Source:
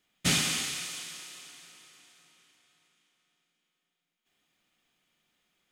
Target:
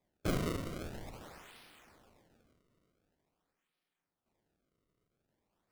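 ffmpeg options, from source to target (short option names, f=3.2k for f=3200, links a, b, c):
-filter_complex "[0:a]acrusher=samples=30:mix=1:aa=0.000001:lfo=1:lforange=48:lforate=0.46,asettb=1/sr,asplit=3[a][b][c];[a]atrim=end=0.704[d];[b]atrim=start=0.7:end=1.22,asetpts=PTS-STARTPTS,afade=t=in:d=0.004:c=qsin,afade=t=out:st=0.516:d=0.004:c=qsin,asubboost=boost=11.5:cutoff=170[e];[c]atrim=start=1.216[f];[d][e]acrossfade=d=0.004:c1=hsin:c2=qsin[g];[g][f]acrossfade=d=0.004:c1=qsin:c2=hsin,volume=-6dB"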